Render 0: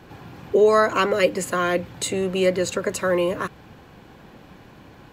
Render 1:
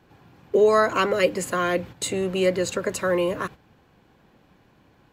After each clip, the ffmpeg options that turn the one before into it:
-af "agate=range=0.316:threshold=0.0178:ratio=16:detection=peak,volume=0.841"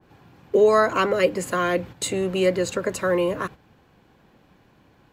-af "adynamicequalizer=threshold=0.0178:dfrequency=1900:dqfactor=0.7:tfrequency=1900:tqfactor=0.7:attack=5:release=100:ratio=0.375:range=2:mode=cutabove:tftype=highshelf,volume=1.12"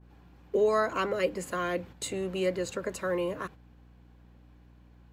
-af "aeval=exprs='val(0)+0.00501*(sin(2*PI*60*n/s)+sin(2*PI*2*60*n/s)/2+sin(2*PI*3*60*n/s)/3+sin(2*PI*4*60*n/s)/4+sin(2*PI*5*60*n/s)/5)':c=same,volume=0.376"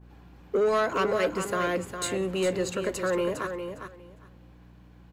-filter_complex "[0:a]asoftclip=type=tanh:threshold=0.0668,asplit=2[s0][s1];[s1]aecho=0:1:406|812|1218:0.398|0.0637|0.0102[s2];[s0][s2]amix=inputs=2:normalize=0,volume=1.68"

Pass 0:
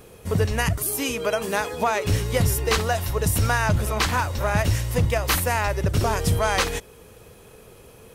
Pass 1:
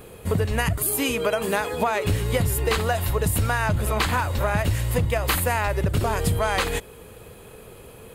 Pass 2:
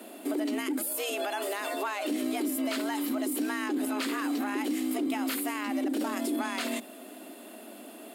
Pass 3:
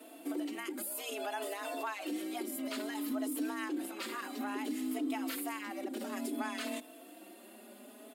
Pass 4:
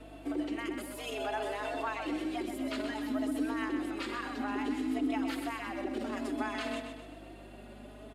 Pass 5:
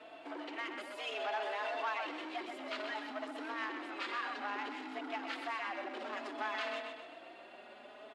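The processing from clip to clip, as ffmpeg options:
-af "equalizer=f=5700:w=4:g=-11.5,acompressor=threshold=0.0794:ratio=6,volume=1.5"
-af "equalizer=f=710:w=0.47:g=-5.5,alimiter=limit=0.0668:level=0:latency=1:release=40,afreqshift=200"
-filter_complex "[0:a]asplit=2[s0][s1];[s1]adelay=4.1,afreqshift=0.59[s2];[s0][s2]amix=inputs=2:normalize=1,volume=0.631"
-filter_complex "[0:a]aecho=1:1:127|254|381|508|635|762:0.447|0.214|0.103|0.0494|0.0237|0.0114,aeval=exprs='val(0)+0.00178*(sin(2*PI*50*n/s)+sin(2*PI*2*50*n/s)/2+sin(2*PI*3*50*n/s)/3+sin(2*PI*4*50*n/s)/4+sin(2*PI*5*50*n/s)/5)':c=same,acrossover=split=230|3200[s0][s1][s2];[s2]adynamicsmooth=sensitivity=6:basefreq=5500[s3];[s0][s1][s3]amix=inputs=3:normalize=0,volume=1.33"
-filter_complex "[0:a]asplit=2[s0][s1];[s1]aeval=exprs='0.0158*(abs(mod(val(0)/0.0158+3,4)-2)-1)':c=same,volume=0.562[s2];[s0][s2]amix=inputs=2:normalize=0,highpass=640,lowpass=4000,volume=0.891"

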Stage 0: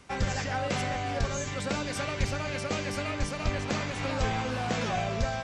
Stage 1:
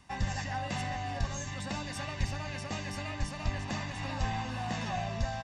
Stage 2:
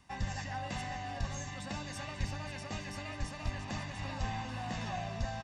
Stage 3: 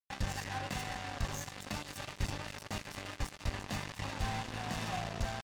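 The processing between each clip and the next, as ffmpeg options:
-af "aecho=1:1:1.1:0.65,volume=0.473"
-af "aecho=1:1:537:0.266,volume=0.631"
-af "acrusher=bits=5:mix=0:aa=0.5"

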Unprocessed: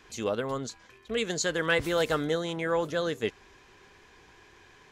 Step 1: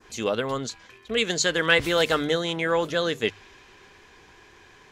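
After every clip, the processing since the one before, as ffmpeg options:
-af "bandreject=f=50:t=h:w=6,bandreject=f=100:t=h:w=6,bandreject=f=150:t=h:w=6,adynamicequalizer=threshold=0.00562:dfrequency=3000:dqfactor=0.85:tfrequency=3000:tqfactor=0.85:attack=5:release=100:ratio=0.375:range=3:mode=boostabove:tftype=bell,volume=1.5"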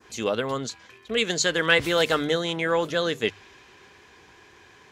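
-af "highpass=62"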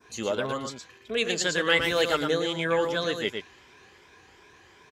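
-filter_complex "[0:a]afftfilt=real='re*pow(10,8/40*sin(2*PI*(1.6*log(max(b,1)*sr/1024/100)/log(2)-(2.7)*(pts-256)/sr)))':imag='im*pow(10,8/40*sin(2*PI*(1.6*log(max(b,1)*sr/1024/100)/log(2)-(2.7)*(pts-256)/sr)))':win_size=1024:overlap=0.75,asplit=2[s0][s1];[s1]aecho=0:1:115:0.501[s2];[s0][s2]amix=inputs=2:normalize=0,volume=0.631"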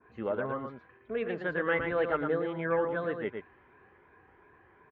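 -af "lowpass=f=1800:w=0.5412,lowpass=f=1800:w=1.3066,volume=0.668"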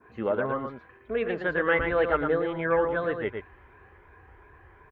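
-af "asubboost=boost=9.5:cutoff=66,volume=1.88"

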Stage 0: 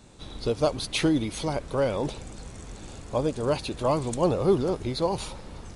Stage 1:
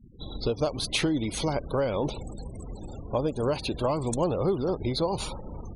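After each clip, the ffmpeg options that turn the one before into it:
-af "afftfilt=real='re*gte(hypot(re,im),0.00891)':imag='im*gte(hypot(re,im),0.00891)':win_size=1024:overlap=0.75,acompressor=threshold=0.0501:ratio=5,volume=1.41"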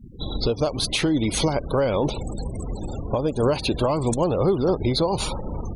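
-af "alimiter=limit=0.0891:level=0:latency=1:release=376,volume=2.82"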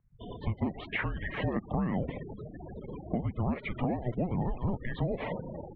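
-af "highpass=f=470:t=q:w=0.5412,highpass=f=470:t=q:w=1.307,lowpass=f=2500:t=q:w=0.5176,lowpass=f=2500:t=q:w=0.7071,lowpass=f=2500:t=q:w=1.932,afreqshift=-360,acompressor=threshold=0.0447:ratio=6"

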